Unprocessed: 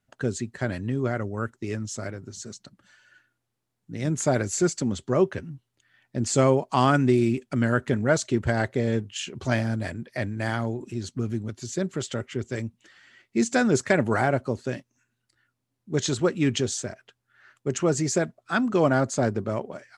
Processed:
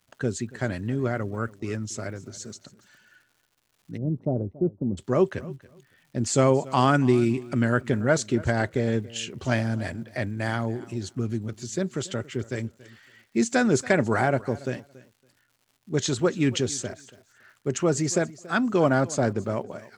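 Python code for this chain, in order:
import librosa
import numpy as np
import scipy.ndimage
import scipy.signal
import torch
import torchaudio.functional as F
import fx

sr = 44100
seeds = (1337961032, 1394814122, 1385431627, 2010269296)

y = fx.dmg_crackle(x, sr, seeds[0], per_s=230.0, level_db=-51.0)
y = fx.gaussian_blur(y, sr, sigma=14.0, at=(3.96, 4.97), fade=0.02)
y = fx.echo_feedback(y, sr, ms=281, feedback_pct=18, wet_db=-20)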